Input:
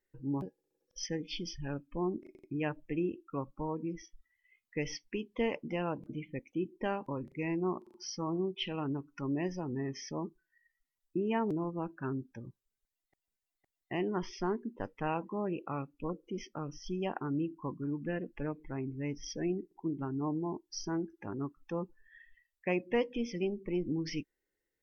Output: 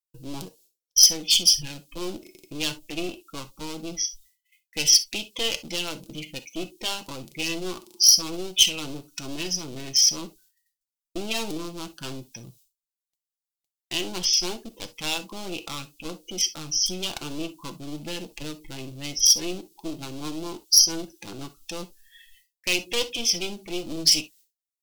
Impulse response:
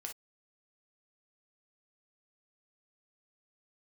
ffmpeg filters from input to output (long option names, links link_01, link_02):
-filter_complex "[0:a]agate=range=-33dB:threshold=-60dB:ratio=3:detection=peak,acontrast=65,aeval=exprs='clip(val(0),-1,0.0168)':channel_layout=same,aexciter=amount=11.8:drive=7.4:freq=2800,asplit=2[link_01][link_02];[1:a]atrim=start_sample=2205,adelay=6[link_03];[link_02][link_03]afir=irnorm=-1:irlink=0,volume=-4dB[link_04];[link_01][link_04]amix=inputs=2:normalize=0,volume=-3.5dB"